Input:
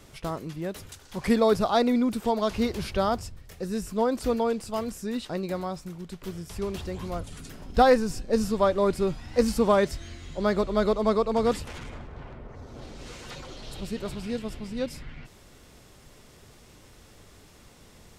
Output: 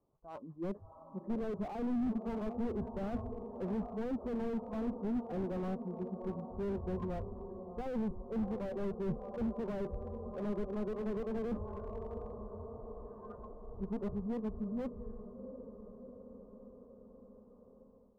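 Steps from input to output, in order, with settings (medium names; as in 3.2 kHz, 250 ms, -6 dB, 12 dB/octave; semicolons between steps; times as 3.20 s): local Wiener filter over 9 samples; reverse; compression 10:1, threshold -30 dBFS, peak gain reduction 16.5 dB; reverse; spectral noise reduction 18 dB; elliptic low-pass 1.1 kHz, stop band 50 dB; bass shelf 140 Hz -9.5 dB; echo that smears into a reverb 713 ms, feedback 66%, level -14 dB; level rider gain up to 9 dB; slew-rate limiter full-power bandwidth 11 Hz; trim -4.5 dB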